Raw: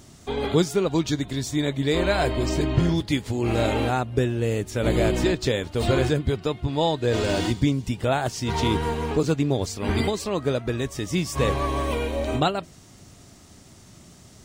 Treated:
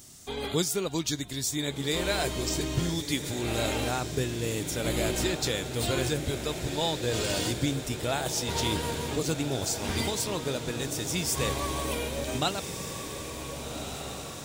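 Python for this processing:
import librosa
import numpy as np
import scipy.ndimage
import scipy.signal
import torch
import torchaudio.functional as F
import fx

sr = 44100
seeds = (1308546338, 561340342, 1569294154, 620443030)

y = scipy.signal.lfilter([1.0, -0.8], [1.0], x)
y = fx.echo_diffused(y, sr, ms=1532, feedback_pct=64, wet_db=-8)
y = F.gain(torch.from_numpy(y), 5.5).numpy()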